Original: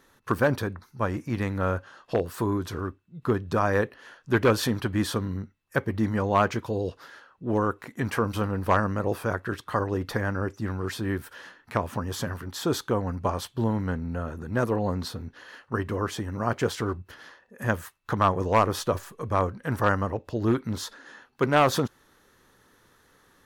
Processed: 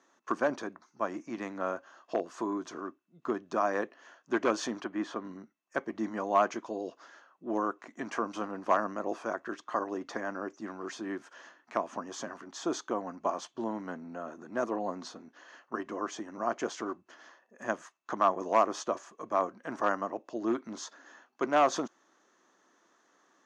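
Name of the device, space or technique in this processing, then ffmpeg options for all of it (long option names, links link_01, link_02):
television speaker: -filter_complex "[0:a]highpass=frequency=220:width=0.5412,highpass=frequency=220:width=1.3066,equalizer=frequency=330:width_type=q:width=4:gain=5,equalizer=frequency=460:width_type=q:width=4:gain=-4,equalizer=frequency=670:width_type=q:width=4:gain=9,equalizer=frequency=1100:width_type=q:width=4:gain=5,equalizer=frequency=4000:width_type=q:width=4:gain=-4,equalizer=frequency=6500:width_type=q:width=4:gain=10,lowpass=frequency=6800:width=0.5412,lowpass=frequency=6800:width=1.3066,asettb=1/sr,asplit=3[link_01][link_02][link_03];[link_01]atrim=end=4.844[link_04];[link_02]atrim=start=4.84:end=5.25,asetpts=PTS-STARTPTS,afade=type=in:duration=0.004:curve=qsin,afade=type=out:start_time=0.406:duration=0.004:curve=qsin,bass=frequency=250:gain=-3,treble=frequency=4000:gain=-14[link_05];[link_03]atrim=start=5.246[link_06];[link_04][link_05]acrossfade=duration=0.004:curve1=hsin:curve2=qsin[link_07];[link_07][link_06]acrossfade=duration=0.004:curve1=qsin:curve2=hsin,volume=-8dB"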